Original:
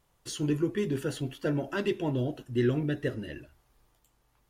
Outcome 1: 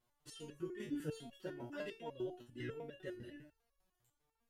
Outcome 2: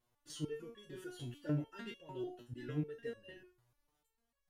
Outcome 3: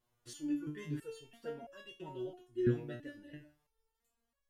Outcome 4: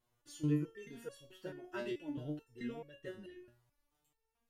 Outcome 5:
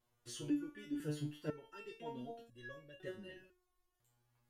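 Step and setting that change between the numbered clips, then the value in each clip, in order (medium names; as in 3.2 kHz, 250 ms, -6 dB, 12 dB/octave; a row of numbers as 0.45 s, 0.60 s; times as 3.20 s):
resonator arpeggio, rate: 10 Hz, 6.7 Hz, 3 Hz, 4.6 Hz, 2 Hz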